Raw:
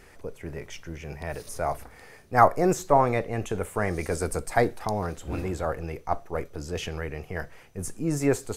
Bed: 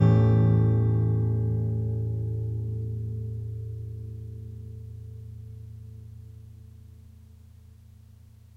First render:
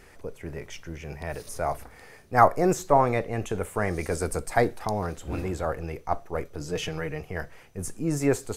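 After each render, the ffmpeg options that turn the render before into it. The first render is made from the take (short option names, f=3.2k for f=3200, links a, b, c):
-filter_complex "[0:a]asettb=1/sr,asplit=3[a][b][c];[a]atrim=end=6.604[d];[b]atrim=start=6.6:end=7.21,asetpts=PTS-STARTPTS,afade=t=in:d=0.004:c=qsin,afade=t=out:st=0.606:d=0.004:c=qsin,aecho=1:1:6.5:0.65,atrim=end_sample=26901[e];[c]atrim=start=7.206[f];[d][e]acrossfade=d=0.004:c1=hsin:c2=qsin[g];[g][f]acrossfade=d=0.004:c1=qsin:c2=hsin"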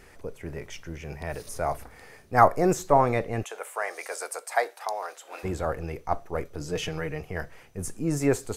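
-filter_complex "[0:a]asplit=3[a][b][c];[a]afade=t=out:st=3.42:d=0.02[d];[b]highpass=f=580:w=0.5412,highpass=f=580:w=1.3066,afade=t=in:st=3.42:d=0.02,afade=t=out:st=5.43:d=0.02[e];[c]afade=t=in:st=5.43:d=0.02[f];[d][e][f]amix=inputs=3:normalize=0"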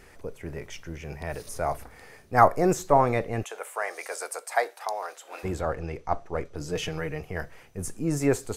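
-filter_complex "[0:a]asettb=1/sr,asplit=3[a][b][c];[a]atrim=end=5.614[d];[b]atrim=start=5.61:end=6.56,asetpts=PTS-STARTPTS,afade=t=in:d=0.004:c=qsin,afade=t=out:st=0.946:d=0.004:c=qsin,lowpass=7.4k[e];[c]atrim=start=6.556[f];[d][e]acrossfade=d=0.004:c1=hsin:c2=qsin[g];[g][f]acrossfade=d=0.004:c1=qsin:c2=hsin"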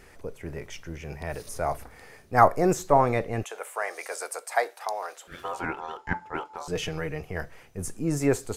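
-filter_complex "[0:a]asettb=1/sr,asplit=3[a][b][c];[a]atrim=end=5.274[d];[b]atrim=start=5.27:end=6.68,asetpts=PTS-STARTPTS,afade=t=in:d=0.004:c=qsin,afade=t=out:st=1.406:d=0.004:c=qsin,aeval=exprs='val(0)*sin(2*PI*870*n/s)':c=same[e];[c]atrim=start=6.676[f];[d][e]acrossfade=d=0.004:c1=hsin:c2=qsin[g];[g][f]acrossfade=d=0.004:c1=qsin:c2=hsin"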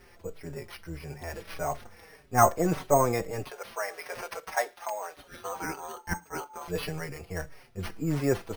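-filter_complex "[0:a]acrusher=samples=6:mix=1:aa=0.000001,asplit=2[a][b];[b]adelay=5.1,afreqshift=-1.7[c];[a][c]amix=inputs=2:normalize=1"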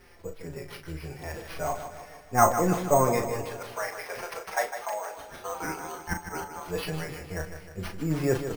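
-filter_complex "[0:a]asplit=2[a][b];[b]adelay=38,volume=-7dB[c];[a][c]amix=inputs=2:normalize=0,asplit=2[d][e];[e]aecho=0:1:154|308|462|616|770|924:0.335|0.181|0.0977|0.0527|0.0285|0.0154[f];[d][f]amix=inputs=2:normalize=0"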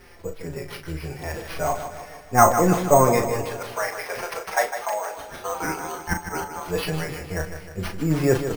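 -af "volume=6dB,alimiter=limit=-2dB:level=0:latency=1"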